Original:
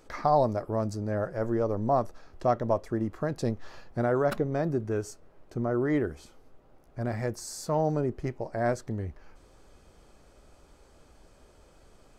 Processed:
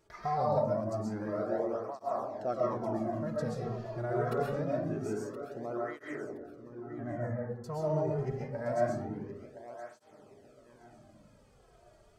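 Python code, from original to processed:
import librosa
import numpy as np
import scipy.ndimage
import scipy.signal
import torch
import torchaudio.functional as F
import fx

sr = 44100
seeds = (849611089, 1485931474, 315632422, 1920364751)

y = fx.steep_lowpass(x, sr, hz=2000.0, slope=72, at=(6.02, 7.64))
y = fx.echo_feedback(y, sr, ms=1020, feedback_pct=32, wet_db=-12.5)
y = fx.rev_freeverb(y, sr, rt60_s=0.88, hf_ratio=0.4, predelay_ms=90, drr_db=-4.0)
y = fx.flanger_cancel(y, sr, hz=0.25, depth_ms=4.0)
y = y * 10.0 ** (-7.5 / 20.0)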